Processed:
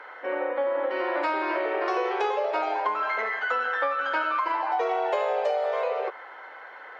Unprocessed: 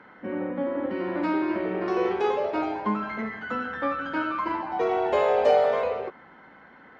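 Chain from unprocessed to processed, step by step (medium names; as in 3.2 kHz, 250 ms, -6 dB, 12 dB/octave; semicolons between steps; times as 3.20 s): inverse Chebyshev high-pass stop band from 180 Hz, stop band 50 dB; compression 12:1, threshold -31 dBFS, peak gain reduction 15.5 dB; trim +8.5 dB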